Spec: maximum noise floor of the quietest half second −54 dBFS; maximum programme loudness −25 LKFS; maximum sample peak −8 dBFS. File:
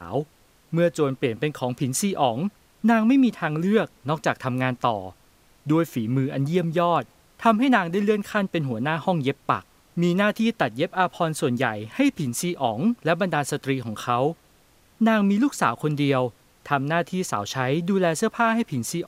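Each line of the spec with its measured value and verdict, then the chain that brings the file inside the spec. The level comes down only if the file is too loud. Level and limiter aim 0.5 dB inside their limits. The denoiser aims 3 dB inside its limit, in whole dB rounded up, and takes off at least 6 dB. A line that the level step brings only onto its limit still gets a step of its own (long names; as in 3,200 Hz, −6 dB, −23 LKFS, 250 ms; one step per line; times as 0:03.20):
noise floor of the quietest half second −58 dBFS: in spec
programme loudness −23.5 LKFS: out of spec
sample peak −5.0 dBFS: out of spec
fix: level −2 dB
brickwall limiter −8.5 dBFS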